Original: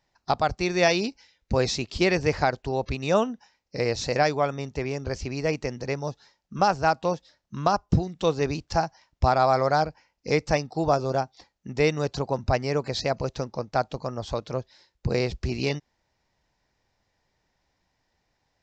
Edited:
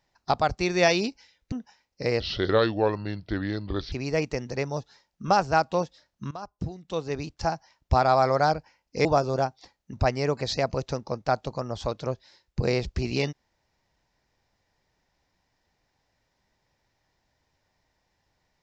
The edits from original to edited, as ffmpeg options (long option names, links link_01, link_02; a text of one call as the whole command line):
ffmpeg -i in.wav -filter_complex "[0:a]asplit=7[link_01][link_02][link_03][link_04][link_05][link_06][link_07];[link_01]atrim=end=1.522[link_08];[link_02]atrim=start=3.258:end=3.944[link_09];[link_03]atrim=start=3.94:end=5.23,asetpts=PTS-STARTPTS,asetrate=33075,aresample=44100[link_10];[link_04]atrim=start=5.226:end=7.62,asetpts=PTS-STARTPTS,afade=type=out:start_time=2.39:duration=0.004:curve=hsin:silence=0.112202[link_11];[link_05]atrim=start=7.62:end=10.362,asetpts=PTS-STARTPTS,afade=type=in:duration=1.7:silence=0.112202[link_12];[link_06]atrim=start=10.808:end=11.692[link_13];[link_07]atrim=start=12.398[link_14];[link_08][link_09]acrossfade=duration=0.004:curve1=hsin:curve2=hsin[link_15];[link_15][link_10]acrossfade=duration=0.004:curve1=hsin:curve2=hsin[link_16];[link_11][link_12]concat=n=2:v=0:a=1[link_17];[link_16][link_17]acrossfade=duration=0.004:curve1=hsin:curve2=hsin[link_18];[link_18][link_13]acrossfade=duration=0.004:curve1=hsin:curve2=hsin[link_19];[link_19][link_14]acrossfade=duration=0.004:curve1=hsin:curve2=hsin" out.wav